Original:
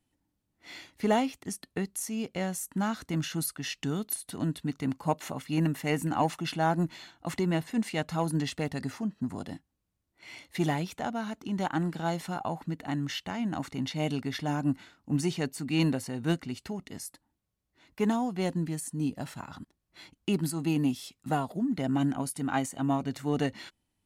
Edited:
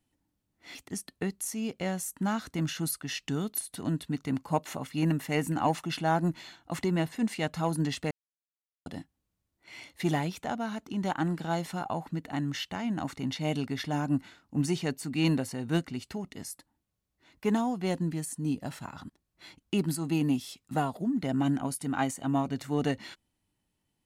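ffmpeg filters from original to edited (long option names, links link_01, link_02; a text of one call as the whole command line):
ffmpeg -i in.wav -filter_complex "[0:a]asplit=4[link_01][link_02][link_03][link_04];[link_01]atrim=end=0.752[link_05];[link_02]atrim=start=1.298:end=8.66,asetpts=PTS-STARTPTS,afade=type=out:start_time=7.358:duration=0.004:curve=hsin[link_06];[link_03]atrim=start=8.66:end=9.41,asetpts=PTS-STARTPTS,volume=0[link_07];[link_04]atrim=start=9.41,asetpts=PTS-STARTPTS,afade=type=in:duration=0.004:curve=hsin[link_08];[link_06][link_07][link_08]concat=n=3:v=0:a=1[link_09];[link_05][link_09]acrossfade=duration=0.004:curve1=hsin:curve2=hsin" out.wav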